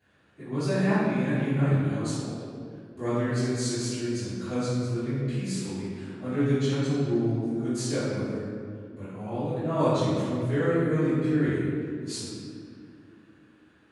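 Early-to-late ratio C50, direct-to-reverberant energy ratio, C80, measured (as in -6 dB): -4.0 dB, -20.5 dB, -1.5 dB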